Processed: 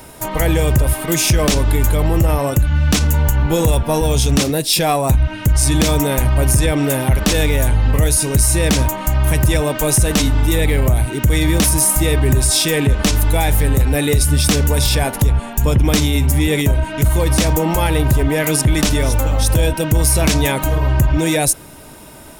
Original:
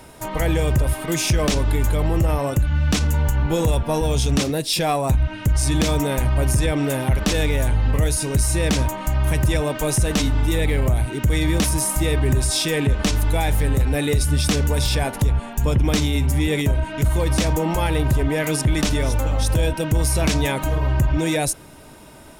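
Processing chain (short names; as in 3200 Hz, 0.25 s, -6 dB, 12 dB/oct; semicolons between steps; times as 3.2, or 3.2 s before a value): high shelf 11000 Hz +10.5 dB; gain +4.5 dB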